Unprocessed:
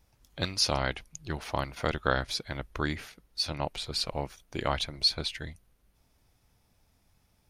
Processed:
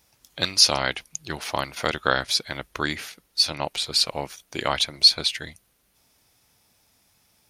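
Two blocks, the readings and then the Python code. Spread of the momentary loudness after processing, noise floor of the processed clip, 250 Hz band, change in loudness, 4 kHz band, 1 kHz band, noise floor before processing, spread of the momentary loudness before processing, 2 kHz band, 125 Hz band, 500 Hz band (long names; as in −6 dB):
18 LU, −66 dBFS, +2.0 dB, +9.0 dB, +10.5 dB, +5.5 dB, −69 dBFS, 13 LU, +7.0 dB, −2.0 dB, +4.0 dB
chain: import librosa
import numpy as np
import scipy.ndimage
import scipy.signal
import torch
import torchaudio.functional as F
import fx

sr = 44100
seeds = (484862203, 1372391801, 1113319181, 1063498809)

y = fx.highpass(x, sr, hz=200.0, slope=6)
y = fx.high_shelf(y, sr, hz=2200.0, db=8.0)
y = F.gain(torch.from_numpy(y), 4.0).numpy()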